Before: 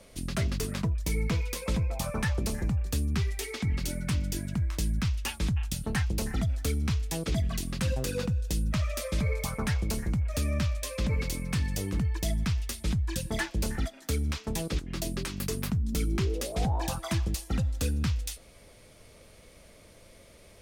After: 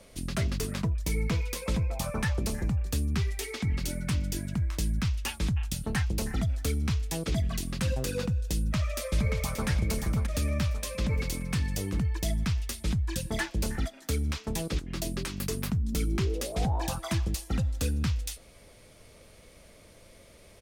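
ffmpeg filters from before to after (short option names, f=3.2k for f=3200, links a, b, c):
-filter_complex "[0:a]asplit=2[a][b];[b]afade=t=in:st=8.54:d=0.01,afade=t=out:st=9.68:d=0.01,aecho=0:1:580|1160|1740|2320|2900:0.473151|0.189261|0.0757042|0.0302817|0.0121127[c];[a][c]amix=inputs=2:normalize=0"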